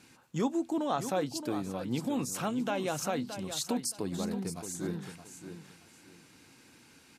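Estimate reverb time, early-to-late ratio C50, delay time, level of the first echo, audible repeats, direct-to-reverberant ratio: none, none, 0.621 s, -10.0 dB, 2, none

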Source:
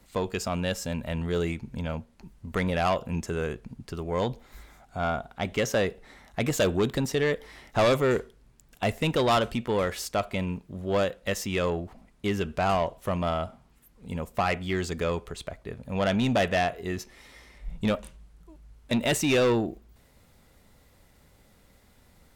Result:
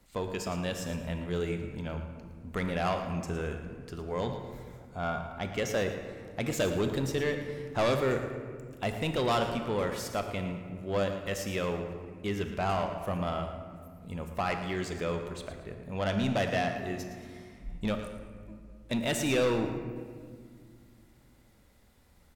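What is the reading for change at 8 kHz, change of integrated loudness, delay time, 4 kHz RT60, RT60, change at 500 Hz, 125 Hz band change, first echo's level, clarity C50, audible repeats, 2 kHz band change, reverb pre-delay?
-4.5 dB, -4.5 dB, 0.113 s, 1.0 s, 2.0 s, -4.5 dB, -3.5 dB, -11.5 dB, 6.0 dB, 1, -4.5 dB, 22 ms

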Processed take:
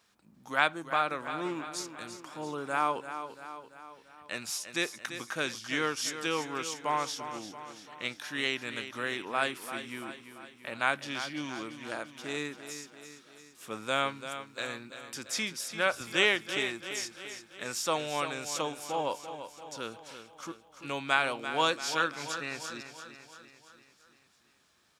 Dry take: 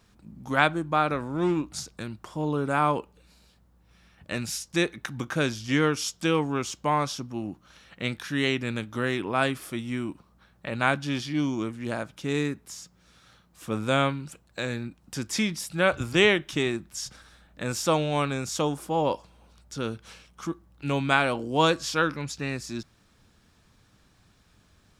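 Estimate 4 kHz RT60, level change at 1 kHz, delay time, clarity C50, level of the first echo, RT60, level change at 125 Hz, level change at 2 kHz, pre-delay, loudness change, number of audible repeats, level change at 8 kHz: none, -4.0 dB, 0.34 s, none, -10.5 dB, none, -17.0 dB, -2.5 dB, none, -5.5 dB, 5, -2.0 dB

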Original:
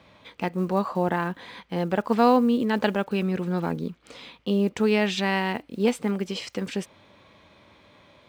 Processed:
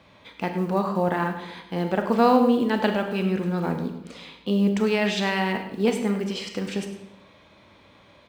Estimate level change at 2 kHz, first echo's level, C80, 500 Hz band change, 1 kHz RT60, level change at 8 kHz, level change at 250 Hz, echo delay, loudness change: +1.0 dB, -13.0 dB, 9.0 dB, +1.0 dB, 0.80 s, +1.0 dB, +1.0 dB, 0.101 s, +1.0 dB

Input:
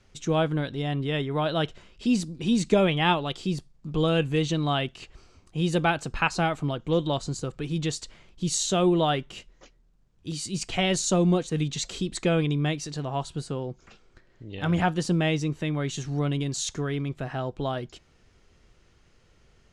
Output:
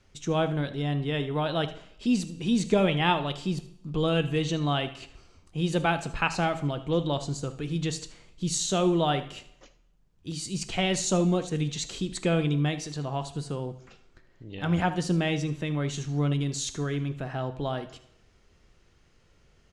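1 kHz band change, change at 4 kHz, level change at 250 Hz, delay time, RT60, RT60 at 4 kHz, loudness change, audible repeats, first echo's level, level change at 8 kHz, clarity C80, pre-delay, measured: -1.5 dB, -1.5 dB, -1.5 dB, 77 ms, 0.75 s, 0.75 s, -1.5 dB, 1, -15.5 dB, -1.5 dB, 17.5 dB, 5 ms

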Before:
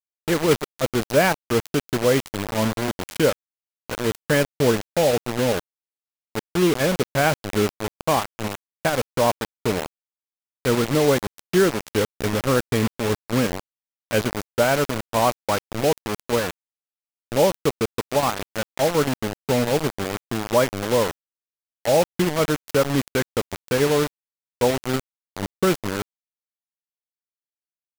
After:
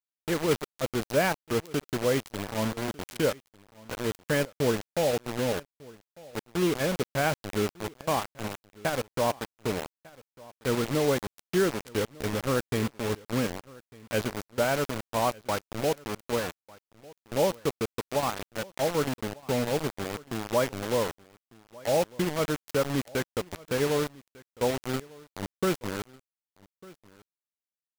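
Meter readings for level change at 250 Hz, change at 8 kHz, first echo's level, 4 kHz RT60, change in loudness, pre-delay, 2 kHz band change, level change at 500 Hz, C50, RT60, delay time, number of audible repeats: -7.0 dB, -7.0 dB, -22.5 dB, none, -7.0 dB, none, -7.0 dB, -7.0 dB, none, none, 1.199 s, 1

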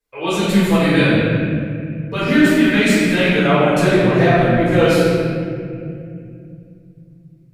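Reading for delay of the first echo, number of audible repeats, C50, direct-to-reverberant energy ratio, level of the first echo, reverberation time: none, none, -4.0 dB, -13.0 dB, none, 2.4 s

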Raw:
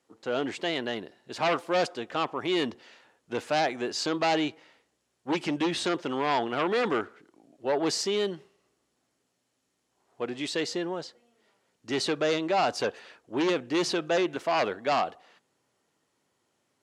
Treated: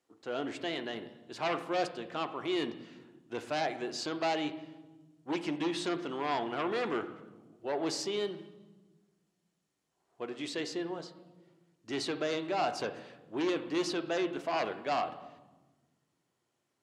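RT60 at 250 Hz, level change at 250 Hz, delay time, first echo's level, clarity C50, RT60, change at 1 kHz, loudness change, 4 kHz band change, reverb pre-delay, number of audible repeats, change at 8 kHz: 2.0 s, -5.0 dB, none, none, 12.0 dB, 1.2 s, -6.0 dB, -6.0 dB, -6.5 dB, 3 ms, none, -7.0 dB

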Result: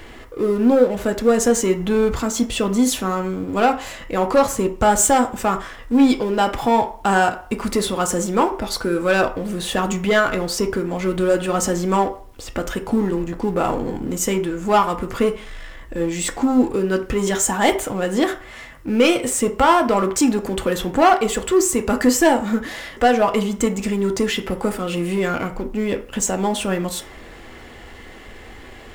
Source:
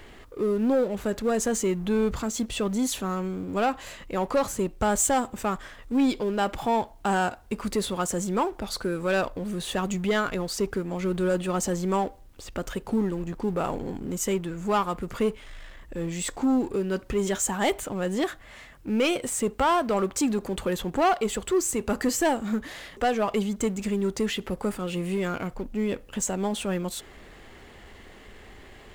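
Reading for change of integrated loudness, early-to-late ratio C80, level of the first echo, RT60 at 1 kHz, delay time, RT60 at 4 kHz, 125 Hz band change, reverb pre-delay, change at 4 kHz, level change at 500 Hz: +7.5 dB, 18.0 dB, none, 0.55 s, none, 0.45 s, +5.0 dB, 3 ms, +7.5 dB, +8.0 dB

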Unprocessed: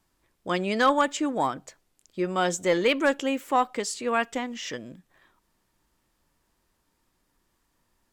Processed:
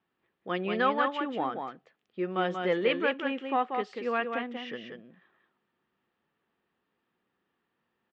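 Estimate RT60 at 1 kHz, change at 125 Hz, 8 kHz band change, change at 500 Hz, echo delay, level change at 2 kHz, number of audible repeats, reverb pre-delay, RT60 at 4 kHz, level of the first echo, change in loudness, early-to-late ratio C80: none, -4.5 dB, under -30 dB, -3.5 dB, 0.186 s, -3.5 dB, 1, none, none, -5.5 dB, -4.5 dB, none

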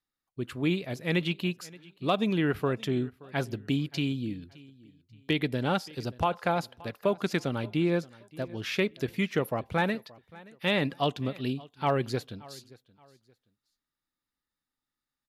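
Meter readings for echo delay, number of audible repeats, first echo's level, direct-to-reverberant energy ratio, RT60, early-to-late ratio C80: 0.575 s, 2, -22.0 dB, none, none, none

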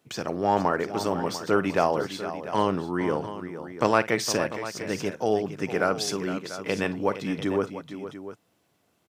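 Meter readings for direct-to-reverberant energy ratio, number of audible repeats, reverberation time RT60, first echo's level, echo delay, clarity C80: none, 3, none, -16.5 dB, 51 ms, none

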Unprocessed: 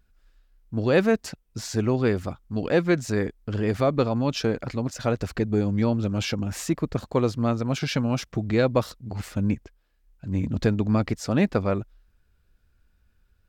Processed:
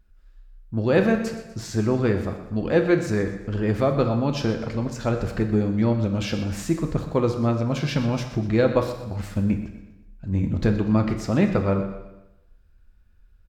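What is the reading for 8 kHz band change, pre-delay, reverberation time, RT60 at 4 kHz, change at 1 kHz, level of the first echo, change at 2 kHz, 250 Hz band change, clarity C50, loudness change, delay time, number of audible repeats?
-2.5 dB, 3 ms, 0.95 s, 0.95 s, +1.0 dB, -14.0 dB, +0.5 dB, +2.0 dB, 7.5 dB, +1.5 dB, 0.123 s, 3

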